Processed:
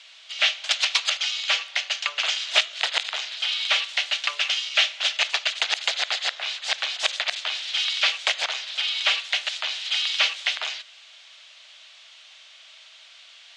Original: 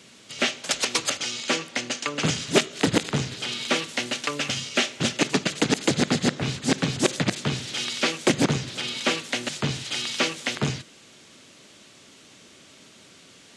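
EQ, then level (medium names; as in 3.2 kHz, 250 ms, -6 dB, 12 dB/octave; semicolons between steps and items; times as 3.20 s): Chebyshev high-pass 650 Hz, order 4; distance through air 70 m; peaking EQ 3.4 kHz +12.5 dB 1.6 oct; -3.5 dB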